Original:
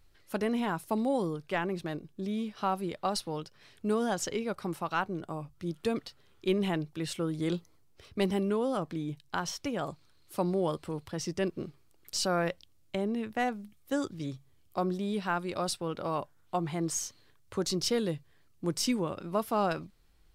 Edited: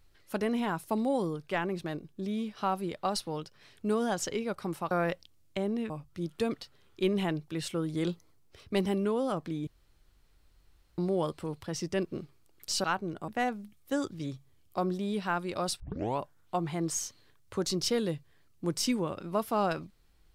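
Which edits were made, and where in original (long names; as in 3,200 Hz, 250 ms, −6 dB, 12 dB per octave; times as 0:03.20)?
0:04.91–0:05.35: swap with 0:12.29–0:13.28
0:09.12–0:10.43: fill with room tone
0:15.80: tape start 0.39 s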